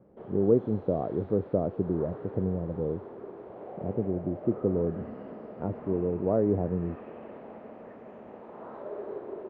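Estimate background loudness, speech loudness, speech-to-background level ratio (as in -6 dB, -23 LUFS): -43.5 LUFS, -30.0 LUFS, 13.5 dB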